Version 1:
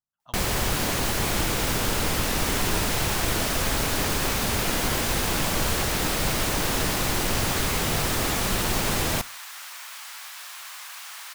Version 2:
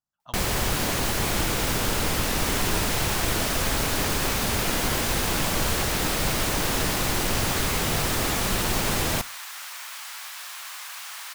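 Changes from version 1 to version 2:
speech +4.5 dB; second sound: send on

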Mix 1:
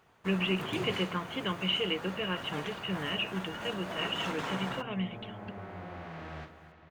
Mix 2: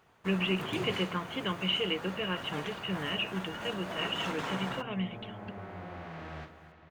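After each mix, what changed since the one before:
none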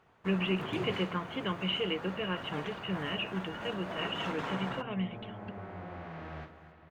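master: add high shelf 4500 Hz -11.5 dB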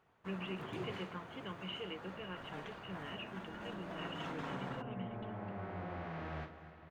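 speech -12.0 dB; first sound -7.0 dB

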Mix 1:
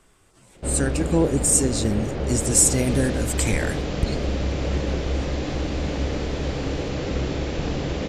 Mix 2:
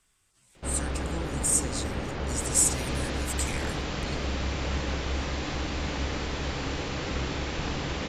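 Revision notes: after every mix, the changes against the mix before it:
speech: add passive tone stack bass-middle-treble 5-5-5; background: add resonant low shelf 750 Hz -6 dB, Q 1.5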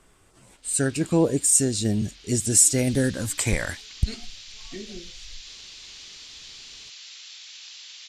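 speech: remove passive tone stack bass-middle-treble 5-5-5; background: add Butterworth band-pass 5300 Hz, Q 1.1

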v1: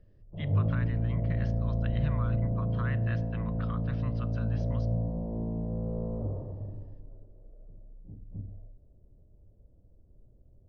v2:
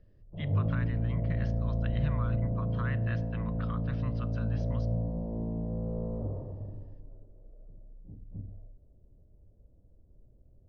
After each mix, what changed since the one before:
background: send -9.0 dB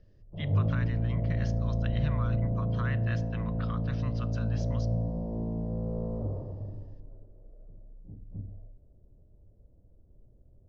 background: send +9.5 dB; master: remove air absorption 200 m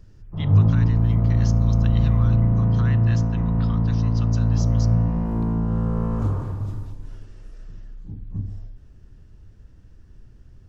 speech: remove LPF 2800 Hz 12 dB/oct; background: remove ladder low-pass 660 Hz, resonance 65%

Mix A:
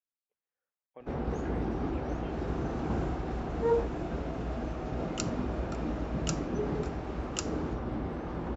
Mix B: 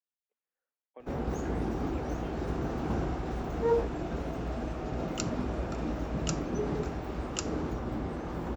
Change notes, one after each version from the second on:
speech: add steep high-pass 190 Hz; first sound: remove air absorption 110 m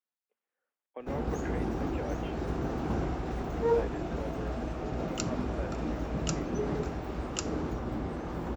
speech +7.0 dB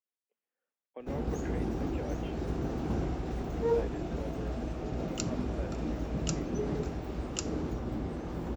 master: add bell 1200 Hz -5.5 dB 2 oct

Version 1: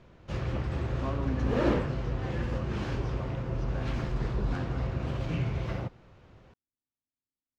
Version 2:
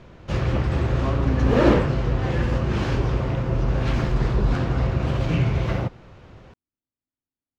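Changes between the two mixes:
speech +6.0 dB; background +9.5 dB

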